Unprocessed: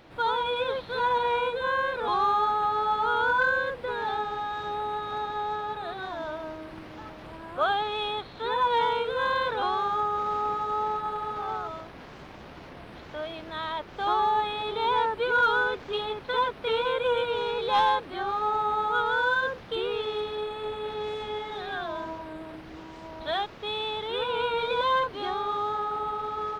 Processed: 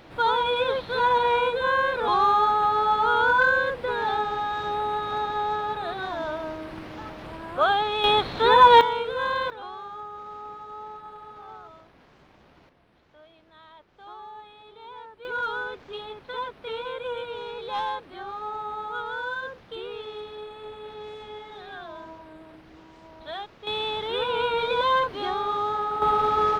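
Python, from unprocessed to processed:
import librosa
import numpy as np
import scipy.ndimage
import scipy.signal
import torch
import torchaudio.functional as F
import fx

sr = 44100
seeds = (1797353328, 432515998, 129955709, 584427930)

y = fx.gain(x, sr, db=fx.steps((0.0, 4.0), (8.04, 11.5), (8.81, 0.0), (9.5, -11.0), (12.69, -18.0), (15.25, -6.5), (23.67, 2.5), (26.02, 10.0)))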